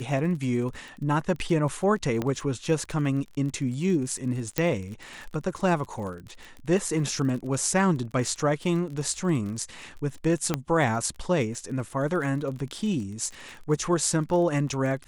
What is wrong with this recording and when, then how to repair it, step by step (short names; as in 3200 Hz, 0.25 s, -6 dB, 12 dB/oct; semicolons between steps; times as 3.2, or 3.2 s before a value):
crackle 30/s -34 dBFS
2.22 pop -15 dBFS
4.58 pop -8 dBFS
10.54 pop -10 dBFS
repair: de-click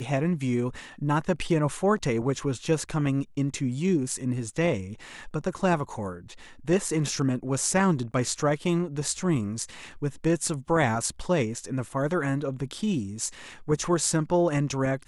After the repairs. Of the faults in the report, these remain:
10.54 pop